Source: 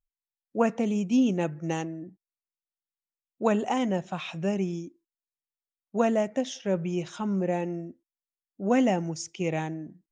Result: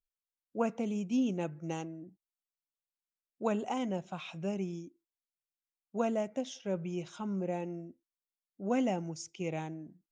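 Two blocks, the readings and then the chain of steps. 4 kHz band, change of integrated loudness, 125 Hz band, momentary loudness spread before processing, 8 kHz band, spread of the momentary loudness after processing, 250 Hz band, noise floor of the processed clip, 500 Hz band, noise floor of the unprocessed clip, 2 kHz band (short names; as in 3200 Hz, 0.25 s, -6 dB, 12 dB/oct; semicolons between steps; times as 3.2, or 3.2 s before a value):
-7.5 dB, -7.5 dB, -7.5 dB, 13 LU, -7.5 dB, 13 LU, -7.5 dB, under -85 dBFS, -7.5 dB, under -85 dBFS, -9.0 dB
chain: notch 1800 Hz, Q 7.9; gain -7.5 dB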